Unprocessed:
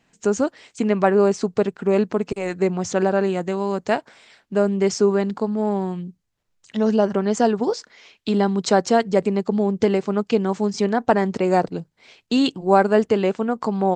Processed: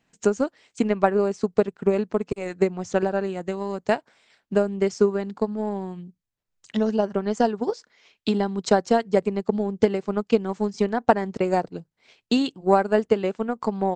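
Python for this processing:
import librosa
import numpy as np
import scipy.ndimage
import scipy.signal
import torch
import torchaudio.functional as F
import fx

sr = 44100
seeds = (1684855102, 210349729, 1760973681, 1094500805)

y = fx.transient(x, sr, attack_db=8, sustain_db=-4)
y = y * librosa.db_to_amplitude(-6.5)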